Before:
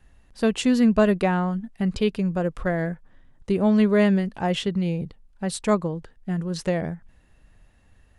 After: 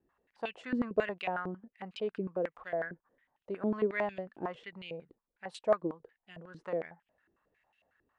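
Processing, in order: step-sequenced band-pass 11 Hz 340–2800 Hz

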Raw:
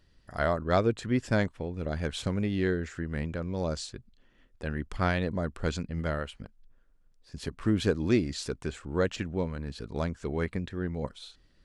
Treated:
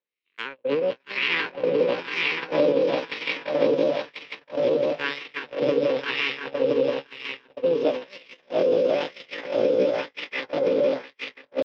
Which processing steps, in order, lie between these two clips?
spectral levelling over time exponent 0.6; dynamic bell 220 Hz, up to -6 dB, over -45 dBFS, Q 6.5; on a send: echo with a slow build-up 171 ms, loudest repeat 5, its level -4 dB; on the sum: pitch shift +8 st; wah-wah 1 Hz 370–1700 Hz, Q 2.2; FFT filter 130 Hz 0 dB, 260 Hz +9 dB, 460 Hz +11 dB, 650 Hz -17 dB, 1 kHz -7 dB, 1.6 kHz +13 dB, 2.4 kHz +8 dB, 4.7 kHz +13 dB, 6.8 kHz -28 dB, 13 kHz -3 dB; formant shift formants +5 st; gate -25 dBFS, range -51 dB; three bands compressed up and down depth 40%

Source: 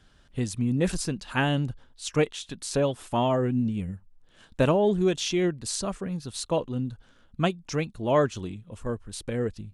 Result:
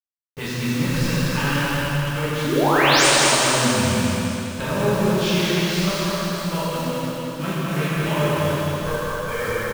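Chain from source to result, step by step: formants flattened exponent 0.6; level-controlled noise filter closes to 1.2 kHz, open at -21 dBFS; spectral noise reduction 15 dB; low-pass that closes with the level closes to 1.3 kHz, closed at -18.5 dBFS; dynamic bell 290 Hz, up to -7 dB, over -38 dBFS, Q 1; in parallel at 0 dB: compressor with a negative ratio -30 dBFS, ratio -0.5; on the sum: peaking EQ 750 Hz -12 dB 0.27 oct; painted sound rise, 2.44–3.07 s, 240–10000 Hz -20 dBFS; bit crusher 6-bit; feedback delay 207 ms, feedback 47%, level -4 dB; reverberation RT60 3.4 s, pre-delay 6 ms, DRR -10 dB; trim -6.5 dB

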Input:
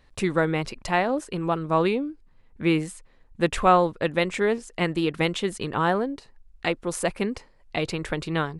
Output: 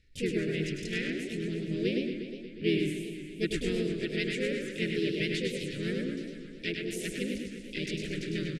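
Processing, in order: elliptic band-stop 380–1900 Hz, stop band 40 dB; harmony voices -4 st -14 dB, +4 st -2 dB; low-pass 8.8 kHz 12 dB/octave; feedback delay 102 ms, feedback 30%, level -5 dB; modulated delay 120 ms, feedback 74%, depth 162 cents, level -9.5 dB; trim -8 dB

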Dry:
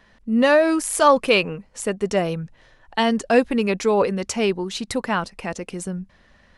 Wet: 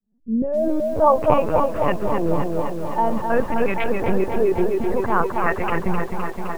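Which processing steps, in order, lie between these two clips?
fade-in on the opening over 0.82 s; level-controlled noise filter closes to 2.3 kHz, open at -17 dBFS; in parallel at 0 dB: compressor with a negative ratio -25 dBFS, ratio -0.5; on the sum: LFO low-pass saw up 0.52 Hz 240–2400 Hz; on a send: band-passed feedback delay 262 ms, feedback 73%, band-pass 800 Hz, level -3 dB; on the sum: LPC vocoder at 8 kHz pitch kept; bit-crushed delay 258 ms, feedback 80%, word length 6-bit, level -10 dB; trim -5.5 dB

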